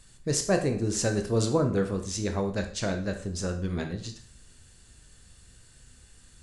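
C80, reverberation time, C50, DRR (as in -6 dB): 14.0 dB, 0.50 s, 9.5 dB, 5.0 dB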